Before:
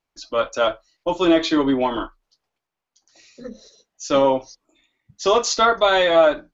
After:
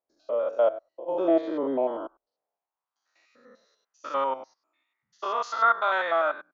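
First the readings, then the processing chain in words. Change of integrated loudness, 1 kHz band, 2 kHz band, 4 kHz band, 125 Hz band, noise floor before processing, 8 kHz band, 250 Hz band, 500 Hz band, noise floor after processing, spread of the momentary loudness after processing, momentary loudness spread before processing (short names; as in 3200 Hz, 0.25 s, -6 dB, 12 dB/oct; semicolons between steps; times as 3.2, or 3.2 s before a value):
-7.5 dB, -5.0 dB, -5.5 dB, -18.5 dB, under -20 dB, -84 dBFS, n/a, -11.0 dB, -8.0 dB, under -85 dBFS, 14 LU, 13 LU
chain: stepped spectrum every 0.1 s; band-pass sweep 570 Hz -> 1300 Hz, 2.39–3.05; gain +1 dB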